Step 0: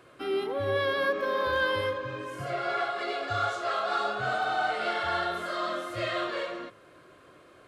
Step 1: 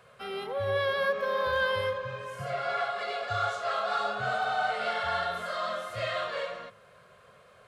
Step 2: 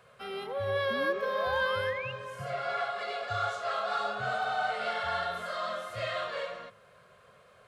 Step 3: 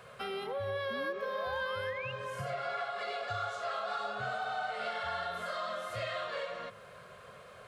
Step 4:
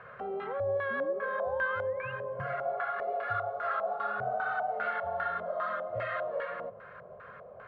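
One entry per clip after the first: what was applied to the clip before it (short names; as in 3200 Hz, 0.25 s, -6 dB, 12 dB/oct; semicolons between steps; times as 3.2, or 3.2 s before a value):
Chebyshev band-stop 210–460 Hz, order 2
painted sound rise, 0.9–2.12, 220–2900 Hz -38 dBFS; gain -2 dB
compressor 3:1, threshold -44 dBFS, peak gain reduction 14 dB; gain +6.5 dB
LFO low-pass square 2.5 Hz 670–1600 Hz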